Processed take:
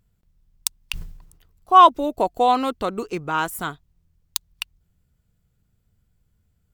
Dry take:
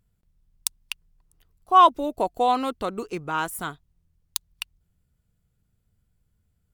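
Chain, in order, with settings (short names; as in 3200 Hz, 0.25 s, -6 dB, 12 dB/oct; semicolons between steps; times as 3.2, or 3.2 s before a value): bell 10000 Hz -5 dB 0.24 oct; 0.8–1.77 sustainer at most 66 dB/s; gain +3.5 dB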